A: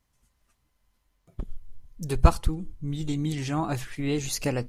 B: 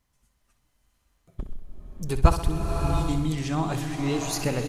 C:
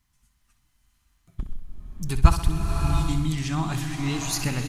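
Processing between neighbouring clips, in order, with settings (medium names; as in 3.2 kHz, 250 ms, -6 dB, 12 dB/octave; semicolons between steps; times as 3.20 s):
on a send: feedback delay 64 ms, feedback 56%, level -11 dB; on the sum: swelling reverb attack 680 ms, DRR 3.5 dB
peaking EQ 500 Hz -15 dB 1 oct; trim +3 dB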